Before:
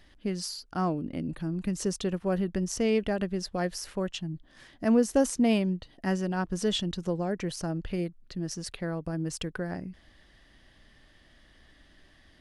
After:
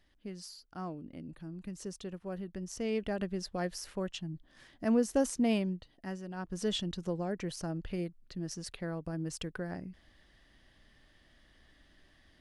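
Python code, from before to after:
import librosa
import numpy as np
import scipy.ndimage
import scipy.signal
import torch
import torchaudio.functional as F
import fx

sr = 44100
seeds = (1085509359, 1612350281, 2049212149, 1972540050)

y = fx.gain(x, sr, db=fx.line((2.51, -12.0), (3.2, -5.0), (5.62, -5.0), (6.23, -13.5), (6.66, -5.0)))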